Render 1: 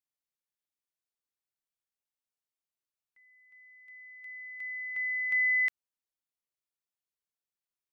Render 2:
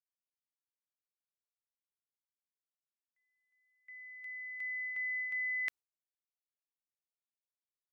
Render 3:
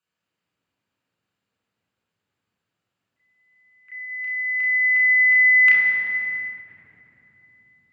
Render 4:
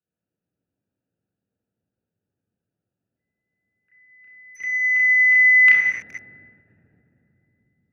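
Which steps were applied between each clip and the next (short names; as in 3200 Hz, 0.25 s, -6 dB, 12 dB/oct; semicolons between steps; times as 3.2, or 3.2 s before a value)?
gate with hold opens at -49 dBFS; reverse; compressor, threshold -35 dBFS, peak gain reduction 9.5 dB; reverse
reverb RT60 3.5 s, pre-delay 3 ms, DRR -6.5 dB; ending taper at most 110 dB/s; gain +6.5 dB
Wiener smoothing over 41 samples; gain +2.5 dB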